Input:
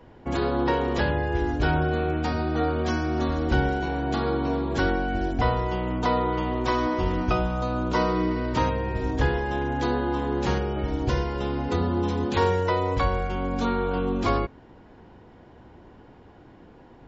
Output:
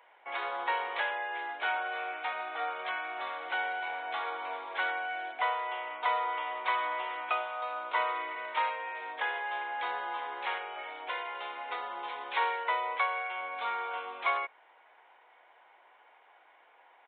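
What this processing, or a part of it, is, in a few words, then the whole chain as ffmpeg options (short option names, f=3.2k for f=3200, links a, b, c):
musical greeting card: -af "aresample=8000,aresample=44100,highpass=f=710:w=0.5412,highpass=f=710:w=1.3066,equalizer=f=2.2k:t=o:w=0.26:g=9,volume=-3dB"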